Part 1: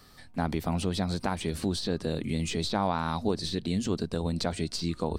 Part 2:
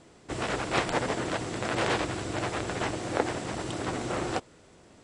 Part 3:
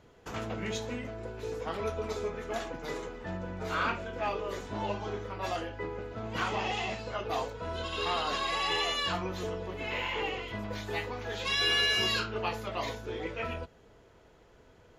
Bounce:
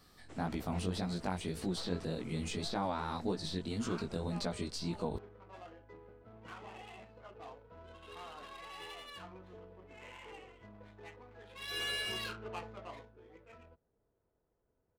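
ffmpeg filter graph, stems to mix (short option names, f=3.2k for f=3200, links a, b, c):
-filter_complex "[0:a]flanger=delay=16:depth=6.5:speed=1.8,volume=-4.5dB,asplit=2[a][b];[1:a]volume=-19dB[c];[2:a]adynamicsmooth=sensitivity=6:basefreq=1.2k,adelay=100,volume=-10dB,afade=t=in:st=11.58:d=0.25:silence=0.446684,afade=t=out:st=12.71:d=0.48:silence=0.281838[d];[b]apad=whole_len=221938[e];[c][e]sidechaincompress=threshold=-45dB:ratio=8:attack=16:release=125[f];[a][f][d]amix=inputs=3:normalize=0"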